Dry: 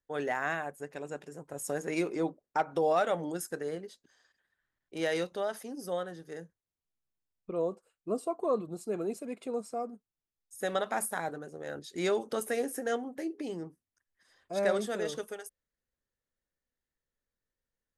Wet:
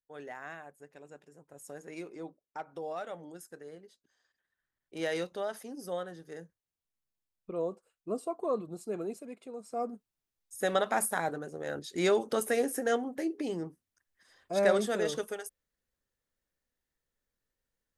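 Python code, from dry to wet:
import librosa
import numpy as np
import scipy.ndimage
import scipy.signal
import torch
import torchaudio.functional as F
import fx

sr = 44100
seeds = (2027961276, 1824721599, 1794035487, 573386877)

y = fx.gain(x, sr, db=fx.line((3.74, -11.5), (5.03, -2.0), (9.0, -2.0), (9.57, -9.0), (9.83, 3.0)))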